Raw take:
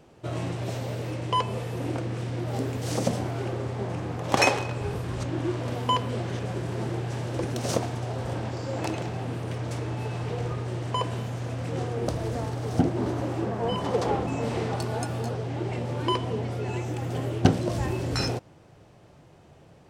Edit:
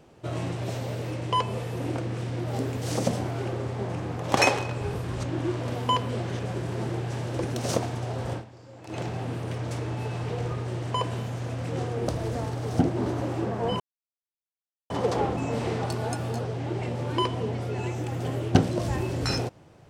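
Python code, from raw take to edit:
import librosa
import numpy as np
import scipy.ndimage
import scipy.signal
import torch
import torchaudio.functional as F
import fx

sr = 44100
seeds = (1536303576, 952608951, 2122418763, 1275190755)

y = fx.edit(x, sr, fx.fade_down_up(start_s=8.33, length_s=0.66, db=-16.0, fade_s=0.12),
    fx.insert_silence(at_s=13.8, length_s=1.1), tone=tone)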